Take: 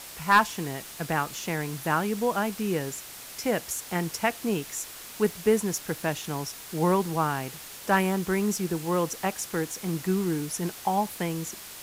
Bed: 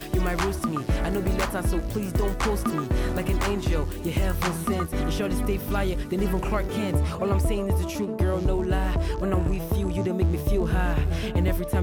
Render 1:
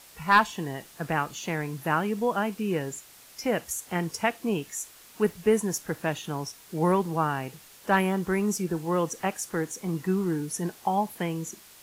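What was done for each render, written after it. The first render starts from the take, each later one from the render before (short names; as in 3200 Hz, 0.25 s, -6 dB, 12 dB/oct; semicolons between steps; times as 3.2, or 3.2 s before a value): noise print and reduce 9 dB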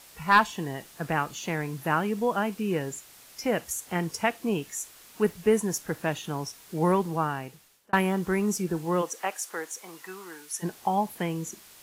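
6.83–7.93 fade out equal-power; 9.01–10.62 HPF 420 Hz -> 1100 Hz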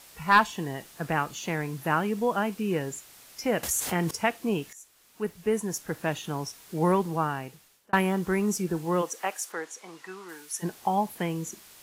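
3.63–4.11 fast leveller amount 70%; 4.73–6.15 fade in, from -15.5 dB; 9.52–10.29 air absorption 53 m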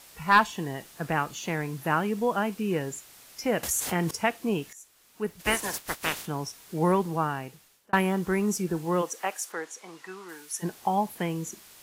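5.39–6.25 spectral limiter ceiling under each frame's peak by 29 dB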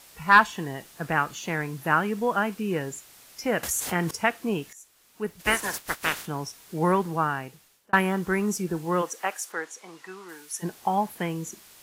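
dynamic EQ 1500 Hz, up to +6 dB, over -40 dBFS, Q 1.5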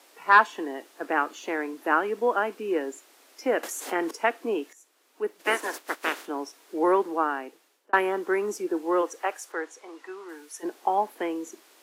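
steep high-pass 280 Hz 48 dB/oct; tilt -2.5 dB/oct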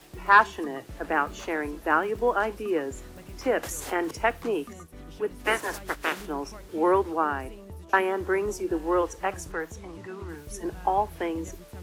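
add bed -18.5 dB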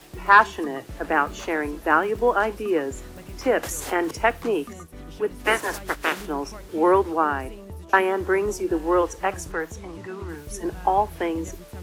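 gain +4 dB; limiter -2 dBFS, peak gain reduction 1.5 dB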